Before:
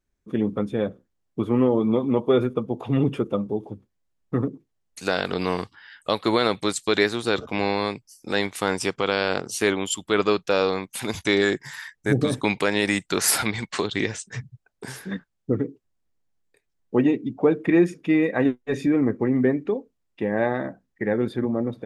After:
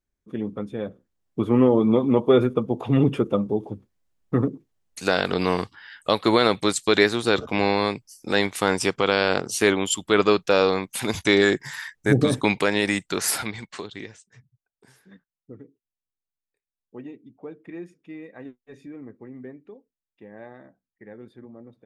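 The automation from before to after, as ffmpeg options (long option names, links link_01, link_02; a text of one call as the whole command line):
ffmpeg -i in.wav -af "volume=2.5dB,afade=type=in:start_time=0.84:duration=0.73:silence=0.398107,afade=type=out:start_time=12.33:duration=1.34:silence=0.298538,afade=type=out:start_time=13.67:duration=0.62:silence=0.266073" out.wav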